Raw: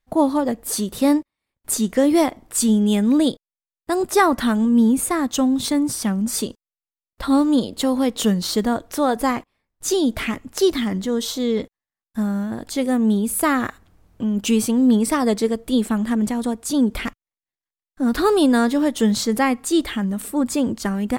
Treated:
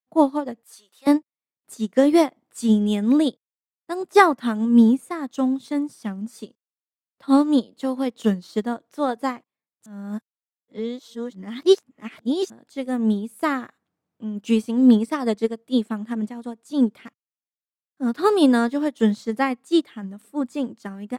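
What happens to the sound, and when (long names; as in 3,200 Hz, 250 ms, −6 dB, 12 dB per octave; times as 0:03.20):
0:00.63–0:01.07: high-pass filter 1,000 Hz
0:09.86–0:12.50: reverse
whole clip: high-pass filter 130 Hz 24 dB per octave; high-shelf EQ 9,000 Hz −8.5 dB; expander for the loud parts 2.5 to 1, over −27 dBFS; level +3.5 dB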